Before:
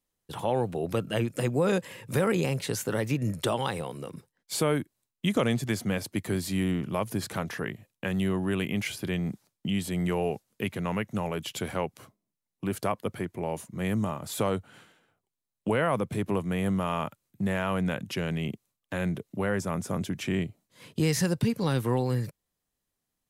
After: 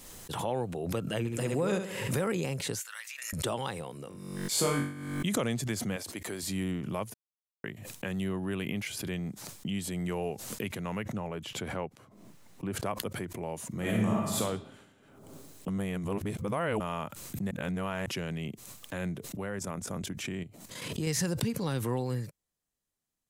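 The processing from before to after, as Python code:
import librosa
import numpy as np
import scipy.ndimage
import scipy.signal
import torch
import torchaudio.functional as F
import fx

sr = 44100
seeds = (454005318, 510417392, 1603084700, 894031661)

y = fx.room_flutter(x, sr, wall_m=11.8, rt60_s=0.53, at=(1.18, 2.15))
y = fx.highpass(y, sr, hz=1400.0, slope=24, at=(2.8, 3.33))
y = fx.room_flutter(y, sr, wall_m=3.6, rt60_s=0.58, at=(4.08, 5.25))
y = fx.bass_treble(y, sr, bass_db=-13, treble_db=0, at=(5.96, 6.43))
y = fx.peak_eq(y, sr, hz=7200.0, db=-5.5, octaves=0.62, at=(8.24, 8.87))
y = fx.high_shelf(y, sr, hz=3900.0, db=-12.0, at=(11.03, 12.86))
y = fx.reverb_throw(y, sr, start_s=13.69, length_s=0.71, rt60_s=1.1, drr_db=-4.5)
y = fx.level_steps(y, sr, step_db=10, at=(19.28, 21.07))
y = fx.edit(y, sr, fx.silence(start_s=7.14, length_s=0.5),
    fx.reverse_span(start_s=15.68, length_s=1.12),
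    fx.reverse_span(start_s=17.51, length_s=0.55), tone=tone)
y = fx.peak_eq(y, sr, hz=7300.0, db=4.0, octaves=0.77)
y = fx.pre_swell(y, sr, db_per_s=44.0)
y = F.gain(torch.from_numpy(y), -5.5).numpy()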